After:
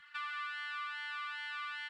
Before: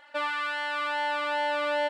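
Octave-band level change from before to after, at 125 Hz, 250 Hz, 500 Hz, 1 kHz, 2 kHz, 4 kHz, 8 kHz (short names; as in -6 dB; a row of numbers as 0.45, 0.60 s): n/a, under -40 dB, under -40 dB, -14.0 dB, -9.5 dB, -9.5 dB, under -10 dB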